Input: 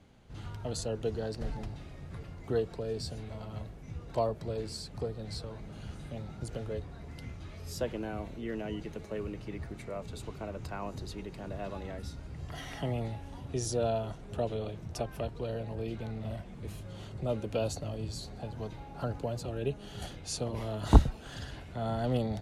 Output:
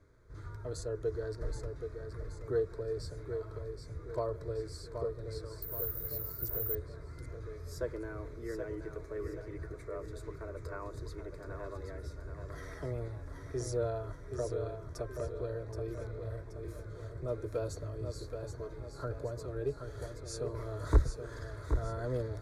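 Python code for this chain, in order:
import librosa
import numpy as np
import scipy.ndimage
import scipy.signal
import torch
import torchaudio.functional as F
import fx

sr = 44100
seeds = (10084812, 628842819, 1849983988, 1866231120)

y = fx.high_shelf(x, sr, hz=4100.0, db=-7.5)
y = fx.notch(y, sr, hz=540.0, q=12.0)
y = 10.0 ** (-13.0 / 20.0) * np.tanh(y / 10.0 ** (-13.0 / 20.0))
y = fx.fixed_phaser(y, sr, hz=780.0, stages=6)
y = fx.echo_feedback(y, sr, ms=776, feedback_pct=44, wet_db=-7)
y = fx.resample_bad(y, sr, factor=3, down='none', up='zero_stuff', at=(5.62, 6.75))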